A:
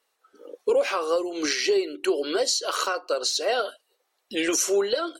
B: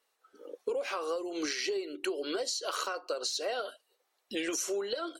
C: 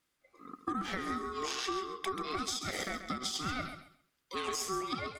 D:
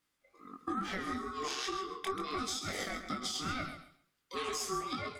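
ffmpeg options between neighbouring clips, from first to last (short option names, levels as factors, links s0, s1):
-af "acompressor=threshold=0.0447:ratio=6,volume=0.668"
-af "aeval=exprs='0.0891*(cos(1*acos(clip(val(0)/0.0891,-1,1)))-cos(1*PI/2))+0.0158*(cos(2*acos(clip(val(0)/0.0891,-1,1)))-cos(2*PI/2))+0.000562*(cos(6*acos(clip(val(0)/0.0891,-1,1)))-cos(6*PI/2))':c=same,aeval=exprs='val(0)*sin(2*PI*760*n/s)':c=same,aecho=1:1:134|268|402:0.335|0.0703|0.0148"
-af "flanger=delay=20:depth=4.1:speed=2.2,volume=1.26"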